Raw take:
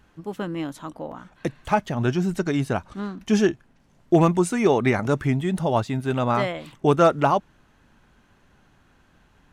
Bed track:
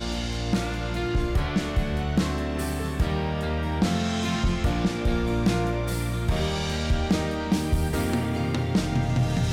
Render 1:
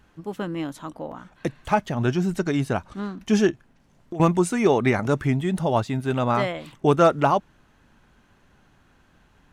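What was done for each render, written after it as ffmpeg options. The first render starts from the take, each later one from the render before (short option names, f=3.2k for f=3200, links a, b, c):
-filter_complex "[0:a]asettb=1/sr,asplit=3[a][b][c];[a]atrim=end=3.504[d];[b]atrim=start=3.5:end=4.2,asetpts=PTS-STARTPTS,afade=t=in:d=0.004:c=qsin,afade=t=out:st=0.696:d=0.004:c=qsin,acompressor=threshold=-31dB:ratio=6:attack=3.2:release=140:knee=1:detection=peak[e];[c]atrim=start=4.196[f];[d][e]acrossfade=d=0.004:c1=hsin:c2=qsin[g];[g][f]acrossfade=d=0.004:c1=qsin:c2=hsin"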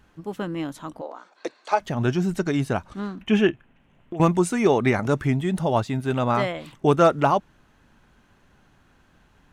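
-filter_complex "[0:a]asettb=1/sr,asplit=3[a][b][c];[a]atrim=end=1.014[d];[b]atrim=start=1.01:end=1.8,asetpts=PTS-STARTPTS,afade=t=in:d=0.004:c=qsin,afade=t=out:st=0.786:d=0.004:c=qsin,highpass=f=370:w=0.5412,highpass=f=370:w=1.3066,equalizer=f=1.8k:t=q:w=4:g=-5,equalizer=f=3k:t=q:w=4:g=-6,equalizer=f=4.4k:t=q:w=4:g=8,lowpass=f=8.1k:w=0.5412,lowpass=f=8.1k:w=1.3066[e];[c]atrim=start=1.796[f];[d][e]acrossfade=d=0.004:c1=hsin:c2=qsin[g];[g][f]acrossfade=d=0.004:c1=qsin:c2=hsin,asettb=1/sr,asplit=3[h][i][j];[h]atrim=end=3.214[k];[i]atrim=start=3.21:end=4.17,asetpts=PTS-STARTPTS,afade=t=in:d=0.004:c=qsin,afade=t=out:st=0.956:d=0.004:c=qsin,highshelf=f=3.7k:t=q:w=3:g=-9[l];[j]atrim=start=4.166[m];[k][l]acrossfade=d=0.004:c1=hsin:c2=qsin[n];[n][m]acrossfade=d=0.004:c1=qsin:c2=hsin"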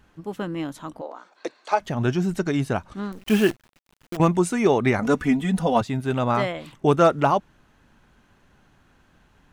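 -filter_complex "[0:a]asettb=1/sr,asplit=3[a][b][c];[a]atrim=end=3.124[d];[b]atrim=start=3.12:end=4.17,asetpts=PTS-STARTPTS,afade=t=in:d=0.004:c=qsin,afade=t=out:st=1.046:d=0.004:c=qsin,acrusher=bits=6:dc=4:mix=0:aa=0.000001[e];[c]atrim=start=4.166[f];[d][e]acrossfade=d=0.004:c1=hsin:c2=qsin[g];[g][f]acrossfade=d=0.004:c1=qsin:c2=hsin,asettb=1/sr,asplit=3[h][i][j];[h]atrim=end=5.014[k];[i]atrim=start=5.01:end=5.81,asetpts=PTS-STARTPTS,afade=t=in:d=0.004:c=qsin,afade=t=out:st=0.796:d=0.004:c=qsin,aecho=1:1:4.1:0.9,atrim=end_sample=35280[l];[j]atrim=start=5.806[m];[k][l]acrossfade=d=0.004:c1=hsin:c2=qsin[n];[n][m]acrossfade=d=0.004:c1=qsin:c2=hsin"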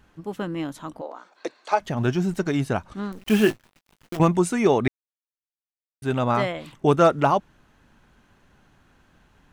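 -filter_complex "[0:a]asettb=1/sr,asplit=3[a][b][c];[a]atrim=end=1.974[d];[b]atrim=start=1.97:end=2.65,asetpts=PTS-STARTPTS,afade=t=in:d=0.004:c=qsin,afade=t=out:st=0.676:d=0.004:c=qsin,aeval=exprs='sgn(val(0))*max(abs(val(0))-0.00335,0)':c=same[e];[c]atrim=start=2.646[f];[d][e]acrossfade=d=0.004:c1=hsin:c2=qsin[g];[g][f]acrossfade=d=0.004:c1=qsin:c2=hsin,asettb=1/sr,asplit=3[h][i][j];[h]atrim=end=3.384[k];[i]atrim=start=3.38:end=4.23,asetpts=PTS-STARTPTS,afade=t=in:d=0.004:c=qsin,afade=t=out:st=0.846:d=0.004:c=qsin,asplit=2[l][m];[m]adelay=19,volume=-10dB[n];[l][n]amix=inputs=2:normalize=0,atrim=end_sample=37485[o];[j]atrim=start=4.226[p];[k][o]acrossfade=d=0.004:c1=hsin:c2=qsin[q];[q][p]acrossfade=d=0.004:c1=qsin:c2=hsin,asplit=3[r][s][t];[r]atrim=end=4.88,asetpts=PTS-STARTPTS,afade=t=out:st=4.876:d=0.004:c=hsin[u];[s]atrim=start=4.88:end=6.02,asetpts=PTS-STARTPTS,volume=0[v];[t]atrim=start=6.02,asetpts=PTS-STARTPTS,afade=t=in:d=0.004:c=hsin[w];[u][v][w]concat=n=3:v=0:a=1"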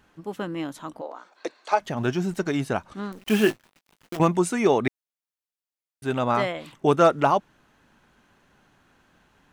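-af "lowshelf=f=120:g=-10.5"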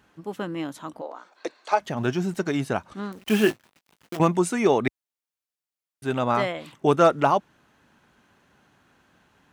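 -af "highpass=60"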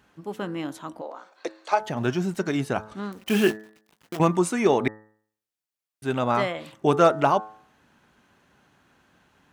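-af "bandreject=f=107.7:t=h:w=4,bandreject=f=215.4:t=h:w=4,bandreject=f=323.1:t=h:w=4,bandreject=f=430.8:t=h:w=4,bandreject=f=538.5:t=h:w=4,bandreject=f=646.2:t=h:w=4,bandreject=f=753.9:t=h:w=4,bandreject=f=861.6:t=h:w=4,bandreject=f=969.3:t=h:w=4,bandreject=f=1.077k:t=h:w=4,bandreject=f=1.1847k:t=h:w=4,bandreject=f=1.2924k:t=h:w=4,bandreject=f=1.4001k:t=h:w=4,bandreject=f=1.5078k:t=h:w=4,bandreject=f=1.6155k:t=h:w=4,bandreject=f=1.7232k:t=h:w=4,bandreject=f=1.8309k:t=h:w=4,bandreject=f=1.9386k:t=h:w=4"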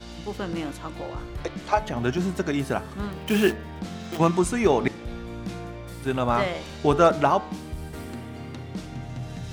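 -filter_complex "[1:a]volume=-11dB[a];[0:a][a]amix=inputs=2:normalize=0"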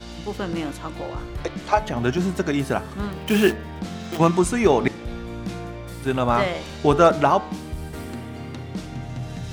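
-af "volume=3dB,alimiter=limit=-3dB:level=0:latency=1"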